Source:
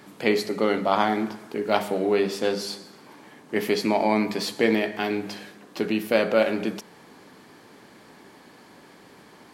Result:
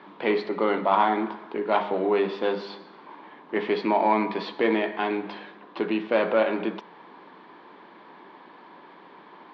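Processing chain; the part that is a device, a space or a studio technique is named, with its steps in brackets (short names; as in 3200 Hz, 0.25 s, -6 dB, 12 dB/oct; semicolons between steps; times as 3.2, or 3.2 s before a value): overdrive pedal into a guitar cabinet (overdrive pedal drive 14 dB, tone 1500 Hz, clips at -4.5 dBFS; speaker cabinet 100–3800 Hz, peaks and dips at 120 Hz -7 dB, 180 Hz +4 dB, 340 Hz +5 dB, 990 Hz +9 dB, 3600 Hz +5 dB); gain -5.5 dB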